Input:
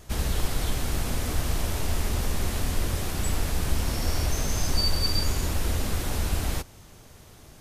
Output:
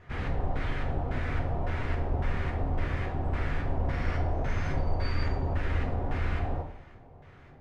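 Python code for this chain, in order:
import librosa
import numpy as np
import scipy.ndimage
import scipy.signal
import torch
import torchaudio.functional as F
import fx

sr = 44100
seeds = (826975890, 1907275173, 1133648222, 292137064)

y = fx.filter_lfo_lowpass(x, sr, shape='square', hz=1.8, low_hz=770.0, high_hz=1900.0, q=2.1)
y = fx.rev_double_slope(y, sr, seeds[0], early_s=0.55, late_s=1.8, knee_db=-18, drr_db=0.0)
y = y * librosa.db_to_amplitude(-6.0)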